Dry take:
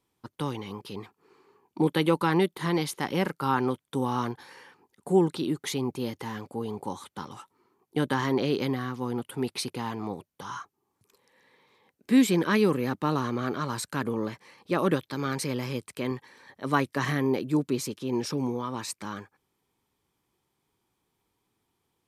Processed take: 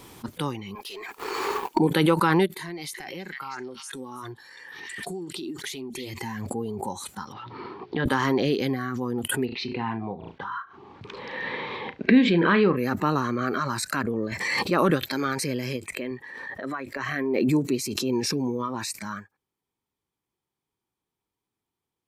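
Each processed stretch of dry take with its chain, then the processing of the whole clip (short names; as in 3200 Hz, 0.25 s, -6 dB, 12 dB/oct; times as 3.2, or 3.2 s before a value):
0.75–1.79 HPF 480 Hz + sample leveller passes 2
2.62–6.21 notch 230 Hz, Q 7.5 + compressor 10:1, threshold -32 dBFS + delay with a stepping band-pass 0.321 s, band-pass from 2700 Hz, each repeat 0.7 oct, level -4 dB
7.32–8.06 steep low-pass 4600 Hz 48 dB/oct + notches 60/120/180/240/300/360/420 Hz + compressor 2.5:1, threshold -45 dBFS
9.45–12.77 LPF 3700 Hz 24 dB/oct + flutter echo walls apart 6.1 m, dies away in 0.2 s
13.79–14.32 transient shaper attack -1 dB, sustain -8 dB + high shelf 11000 Hz -6 dB
15.76–17.49 tone controls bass -3 dB, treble -7 dB + compressor 20:1, threshold -27 dBFS + mismatched tape noise reduction decoder only
whole clip: spectral noise reduction 12 dB; dynamic EQ 1400 Hz, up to +4 dB, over -43 dBFS, Q 2.4; backwards sustainer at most 25 dB/s; gain +2 dB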